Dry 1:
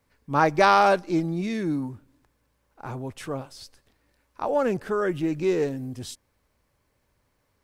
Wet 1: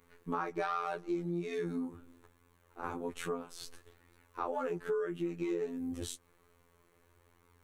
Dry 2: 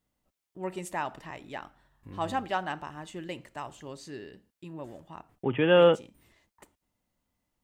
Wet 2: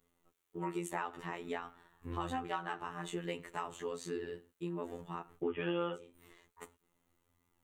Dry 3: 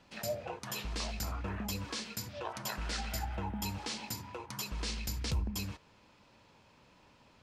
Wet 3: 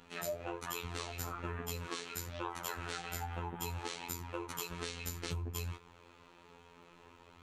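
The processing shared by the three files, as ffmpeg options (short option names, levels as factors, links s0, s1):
-filter_complex "[0:a]equalizer=f=200:t=o:w=0.33:g=-7,equalizer=f=400:t=o:w=0.33:g=10,equalizer=f=630:t=o:w=0.33:g=-5,equalizer=f=1250:t=o:w=0.33:g=5,equalizer=f=5000:t=o:w=0.33:g=-10,asplit=2[s0][s1];[s1]alimiter=limit=0.178:level=0:latency=1:release=490,volume=1.19[s2];[s0][s2]amix=inputs=2:normalize=0,afftfilt=real='hypot(re,im)*cos(PI*b)':imag='0':win_size=2048:overlap=0.75,flanger=delay=4.2:depth=6.6:regen=-38:speed=0.6:shape=sinusoidal,acompressor=threshold=0.0112:ratio=4,volume=1.5"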